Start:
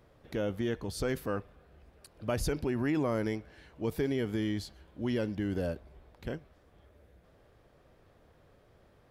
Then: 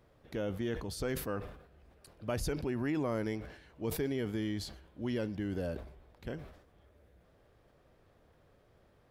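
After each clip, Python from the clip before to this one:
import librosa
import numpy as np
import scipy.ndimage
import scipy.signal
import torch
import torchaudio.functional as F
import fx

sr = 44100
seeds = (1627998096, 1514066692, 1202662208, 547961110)

y = fx.sustainer(x, sr, db_per_s=81.0)
y = y * 10.0 ** (-3.5 / 20.0)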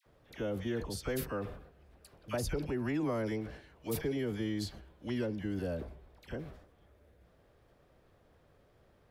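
y = fx.dispersion(x, sr, late='lows', ms=60.0, hz=1100.0)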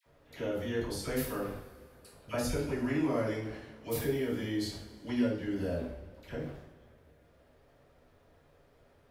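y = fx.rev_double_slope(x, sr, seeds[0], early_s=0.53, late_s=2.5, knee_db=-19, drr_db=-5.0)
y = y * 10.0 ** (-3.0 / 20.0)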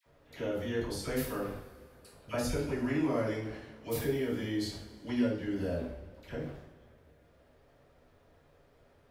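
y = fx.peak_eq(x, sr, hz=12000.0, db=-2.0, octaves=0.77)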